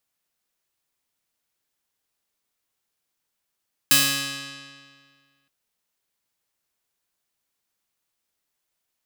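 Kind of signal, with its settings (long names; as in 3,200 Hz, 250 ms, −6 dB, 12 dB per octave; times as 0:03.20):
Karplus-Strong string C#3, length 1.57 s, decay 1.89 s, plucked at 0.3, bright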